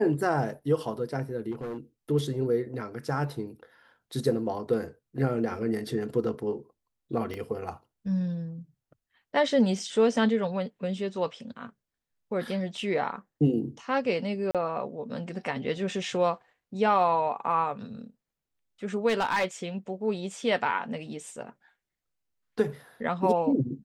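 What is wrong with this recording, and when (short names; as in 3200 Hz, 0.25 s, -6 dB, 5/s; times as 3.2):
1.51–1.78 clipped -31.5 dBFS
7.34 pop -23 dBFS
14.51–14.55 gap 37 ms
19.08–19.45 clipped -21.5 dBFS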